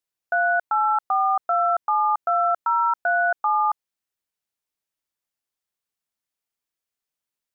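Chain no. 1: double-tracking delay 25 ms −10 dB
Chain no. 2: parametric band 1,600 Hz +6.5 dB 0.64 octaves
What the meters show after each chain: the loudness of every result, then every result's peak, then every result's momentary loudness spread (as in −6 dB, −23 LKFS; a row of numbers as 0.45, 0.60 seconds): −22.0, −18.5 LKFS; −13.5, −10.5 dBFS; 3, 3 LU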